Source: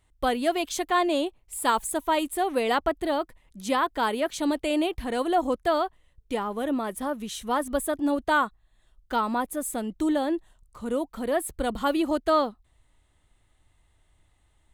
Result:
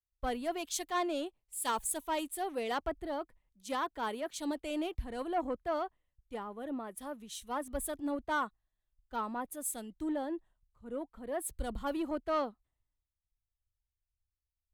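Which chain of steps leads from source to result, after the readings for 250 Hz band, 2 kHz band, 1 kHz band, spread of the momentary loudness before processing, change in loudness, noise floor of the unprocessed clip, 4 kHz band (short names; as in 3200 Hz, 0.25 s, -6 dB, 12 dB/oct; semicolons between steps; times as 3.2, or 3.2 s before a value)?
-11.0 dB, -11.0 dB, -10.5 dB, 7 LU, -10.0 dB, -66 dBFS, -10.5 dB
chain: soft clip -18 dBFS, distortion -17 dB; three-band expander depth 100%; gain -9 dB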